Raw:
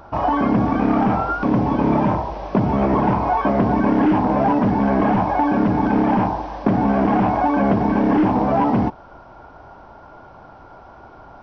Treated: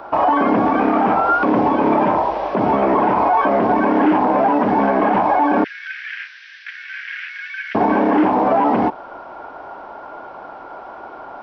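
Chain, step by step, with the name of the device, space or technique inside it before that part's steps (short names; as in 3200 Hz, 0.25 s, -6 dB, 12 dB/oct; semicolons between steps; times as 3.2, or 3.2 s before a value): 5.64–7.75 steep high-pass 1600 Hz 72 dB/oct; DJ mixer with the lows and highs turned down (three-band isolator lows -20 dB, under 270 Hz, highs -12 dB, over 3900 Hz; limiter -16.5 dBFS, peak gain reduction 9 dB); gain +9 dB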